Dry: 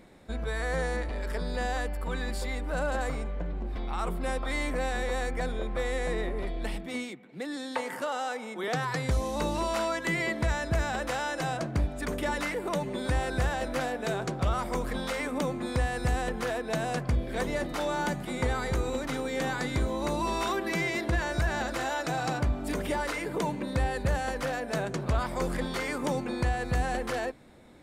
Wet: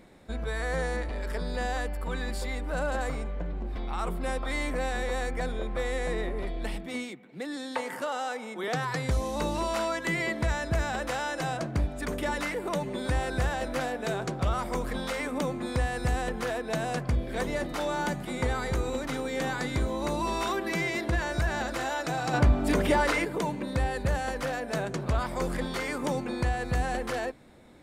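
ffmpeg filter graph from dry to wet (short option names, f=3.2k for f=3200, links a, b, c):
-filter_complex "[0:a]asettb=1/sr,asplit=3[a][b][c];[a]atrim=end=22.334[d];[b]atrim=start=22.33:end=23.25,asetpts=PTS-STARTPTS,afade=t=in:d=0.004:c=qsin,afade=t=out:st=0.916:d=0.004:c=qsin,highshelf=f=6.6k:g=-6,acontrast=73[e];[c]atrim=start=23.246[f];[d][e]acrossfade=d=0.004:c1=hsin:c2=qsin[g];[g][f]acrossfade=d=0.004:c1=qsin:c2=hsin"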